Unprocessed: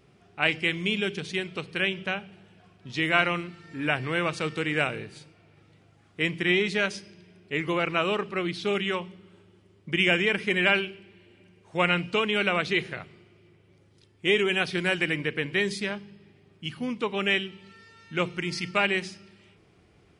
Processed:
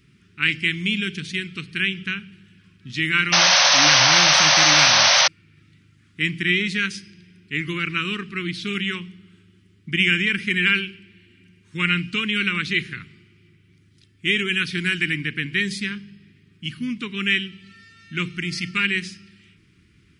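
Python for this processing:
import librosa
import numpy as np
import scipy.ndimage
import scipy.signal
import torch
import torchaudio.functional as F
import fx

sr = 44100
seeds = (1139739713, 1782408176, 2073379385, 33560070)

y = scipy.signal.sosfilt(scipy.signal.cheby1(2, 1.0, [260.0, 1700.0], 'bandstop', fs=sr, output='sos'), x)
y = fx.spec_paint(y, sr, seeds[0], shape='noise', start_s=3.32, length_s=1.96, low_hz=520.0, high_hz=6300.0, level_db=-20.0)
y = y * librosa.db_to_amplitude(5.0)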